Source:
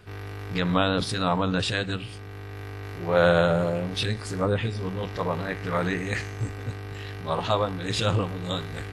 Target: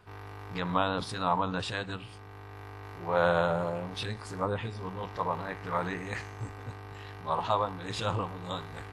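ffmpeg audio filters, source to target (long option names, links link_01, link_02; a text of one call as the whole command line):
ffmpeg -i in.wav -af "equalizer=frequency=950:width=1.7:gain=11,volume=-9dB" out.wav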